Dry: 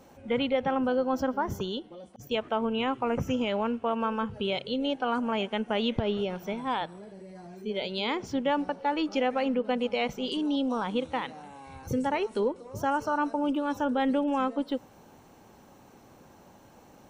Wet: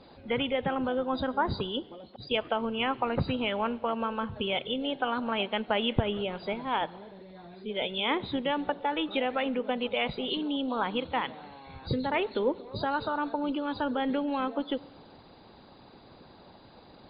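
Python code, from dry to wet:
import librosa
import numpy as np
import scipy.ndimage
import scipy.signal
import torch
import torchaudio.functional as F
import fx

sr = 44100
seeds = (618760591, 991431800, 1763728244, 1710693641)

y = fx.freq_compress(x, sr, knee_hz=3300.0, ratio=4.0)
y = fx.rev_schroeder(y, sr, rt60_s=1.2, comb_ms=31, drr_db=19.0)
y = fx.hpss(y, sr, part='percussive', gain_db=8)
y = y * 10.0 ** (-3.5 / 20.0)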